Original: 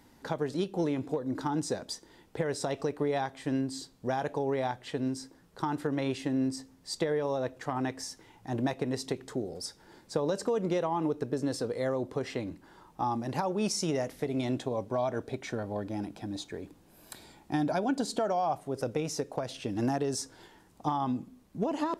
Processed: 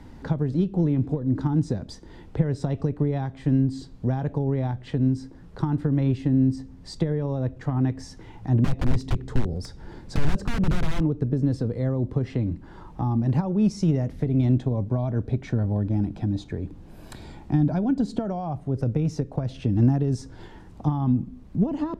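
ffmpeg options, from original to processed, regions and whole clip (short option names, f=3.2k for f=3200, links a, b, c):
-filter_complex "[0:a]asettb=1/sr,asplit=3[a][b][c];[a]atrim=end=8.644[d];[b]atrim=start=8.64:end=11.01,asetpts=PTS-STARTPTS,afade=t=in:d=0.004:c=qsin,afade=t=out:st=2.366:d=0.004:c=qsin,lowshelf=f=120:g=5.5,aeval=exprs='(mod(21.1*val(0)+1,2)-1)/21.1':c=same[e];[c]atrim=start=11.006[f];[d][e]acrossfade=d=0.004:c1=hsin:c2=qsin[g];[g][f]acrossfade=d=0.004:c1=qsin:c2=hsin,aemphasis=mode=reproduction:type=bsi,acrossover=split=250[h][i];[i]acompressor=threshold=-51dB:ratio=2[j];[h][j]amix=inputs=2:normalize=0,volume=8.5dB"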